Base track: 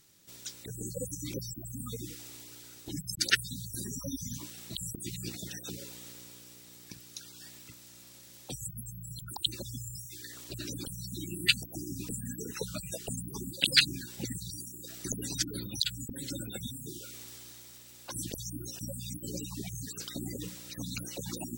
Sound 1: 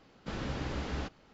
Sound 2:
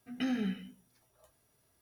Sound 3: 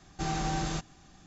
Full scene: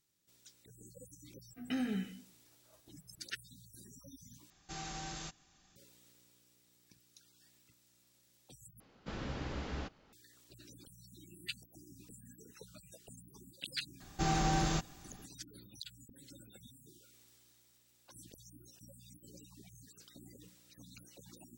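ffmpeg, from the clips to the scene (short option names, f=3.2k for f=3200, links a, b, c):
-filter_complex "[3:a]asplit=2[a][b];[0:a]volume=-17.5dB[c];[a]tiltshelf=f=1.4k:g=-5[d];[c]asplit=3[e][f][g];[e]atrim=end=4.504[h];[d]atrim=end=1.26,asetpts=PTS-STARTPTS,volume=-10.5dB[i];[f]atrim=start=5.756:end=8.804[j];[1:a]atrim=end=1.33,asetpts=PTS-STARTPTS,volume=-4.5dB[k];[g]atrim=start=10.126[l];[2:a]atrim=end=1.81,asetpts=PTS-STARTPTS,volume=-3dB,afade=t=in:d=0.004:c=hsin,afade=t=out:st=1.806:d=0.004:c=hsin,adelay=1500[m];[b]atrim=end=1.26,asetpts=PTS-STARTPTS,afade=t=in:d=0.004:c=hsin,afade=t=out:st=1.256:d=0.004:c=hsin,adelay=14000[n];[h][i]acrossfade=d=0.004:c1=hsin:c2=hsin[o];[o][j]acrossfade=d=0.004:c1=hsin:c2=hsin[p];[p][k]acrossfade=d=0.004:c1=hsin:c2=hsin[q];[q][l]acrossfade=d=0.004:c1=hsin:c2=hsin[r];[r][m][n]amix=inputs=3:normalize=0"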